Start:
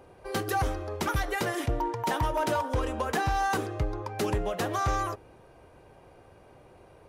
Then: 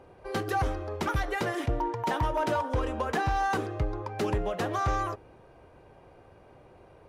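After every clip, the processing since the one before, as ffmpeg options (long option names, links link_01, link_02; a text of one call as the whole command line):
ffmpeg -i in.wav -af "lowpass=frequency=3800:poles=1" out.wav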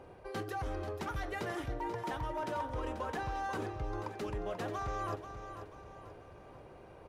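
ffmpeg -i in.wav -af "areverse,acompressor=threshold=-35dB:ratio=10,areverse,aecho=1:1:487|974|1461|1948|2435:0.335|0.141|0.0591|0.0248|0.0104" out.wav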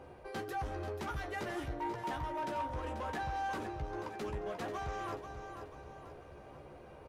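ffmpeg -i in.wav -filter_complex "[0:a]asoftclip=type=tanh:threshold=-33.5dB,asplit=2[link_01][link_02];[link_02]adelay=14,volume=-5.5dB[link_03];[link_01][link_03]amix=inputs=2:normalize=0" out.wav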